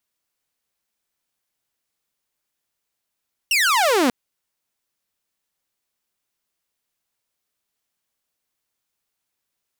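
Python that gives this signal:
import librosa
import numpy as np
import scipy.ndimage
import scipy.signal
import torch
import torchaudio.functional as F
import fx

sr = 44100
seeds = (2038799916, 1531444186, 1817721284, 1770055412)

y = fx.laser_zap(sr, level_db=-12.5, start_hz=2900.0, end_hz=230.0, length_s=0.59, wave='saw')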